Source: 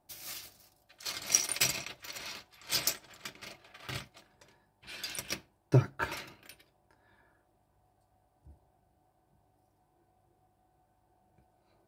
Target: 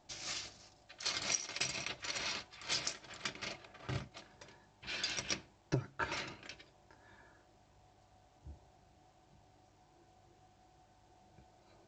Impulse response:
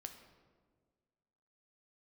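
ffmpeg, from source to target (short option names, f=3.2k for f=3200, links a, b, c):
-filter_complex "[0:a]asettb=1/sr,asplit=3[a][b][c];[a]atrim=end=3.654[d];[b]atrim=start=3.65:end=4.12,asetpts=PTS-STARTPTS,afade=t=in:d=0.004:c=qsin,afade=t=out:st=0.466:d=0.004:c=qsin,equalizer=f=3.8k:w=0.33:g=-12[e];[c]atrim=start=4.116[f];[d][e]acrossfade=d=0.004:c1=hsin:c2=qsin[g];[g][f]acrossfade=d=0.004:c1=qsin:c2=hsin,acompressor=threshold=-36dB:ratio=12,volume=4dB" -ar 16000 -c:a pcm_alaw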